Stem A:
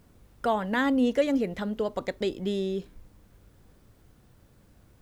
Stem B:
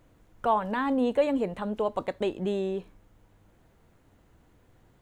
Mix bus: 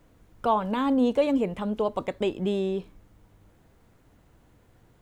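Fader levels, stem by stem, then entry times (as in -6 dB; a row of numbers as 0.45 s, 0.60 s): -8.5 dB, +1.0 dB; 0.00 s, 0.00 s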